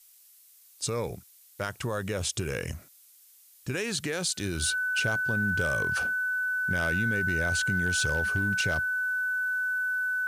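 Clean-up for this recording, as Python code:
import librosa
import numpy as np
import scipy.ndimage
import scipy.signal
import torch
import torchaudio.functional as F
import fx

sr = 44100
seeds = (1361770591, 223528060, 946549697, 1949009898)

y = fx.fix_declip(x, sr, threshold_db=-19.0)
y = fx.notch(y, sr, hz=1500.0, q=30.0)
y = fx.noise_reduce(y, sr, print_start_s=0.0, print_end_s=0.5, reduce_db=19.0)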